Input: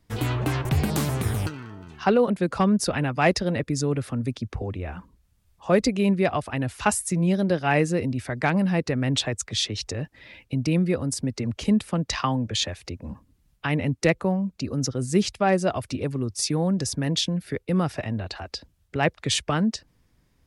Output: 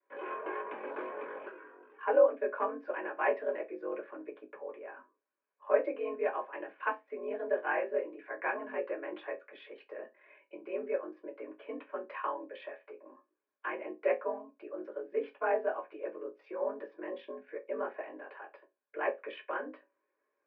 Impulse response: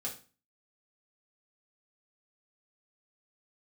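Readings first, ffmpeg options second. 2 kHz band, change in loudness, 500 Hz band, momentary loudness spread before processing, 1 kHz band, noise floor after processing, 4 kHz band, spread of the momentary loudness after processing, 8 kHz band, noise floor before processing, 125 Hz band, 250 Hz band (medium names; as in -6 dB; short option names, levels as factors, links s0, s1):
-9.0 dB, -11.0 dB, -6.0 dB, 11 LU, -8.5 dB, -83 dBFS, under -25 dB, 16 LU, under -40 dB, -66 dBFS, under -40 dB, -22.5 dB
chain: -filter_complex "[0:a]aeval=exprs='val(0)*sin(2*PI*22*n/s)':c=same[s0];[1:a]atrim=start_sample=2205,asetrate=88200,aresample=44100[s1];[s0][s1]afir=irnorm=-1:irlink=0,highpass=f=350:t=q:w=0.5412,highpass=f=350:t=q:w=1.307,lowpass=f=2200:t=q:w=0.5176,lowpass=f=2200:t=q:w=0.7071,lowpass=f=2200:t=q:w=1.932,afreqshift=56"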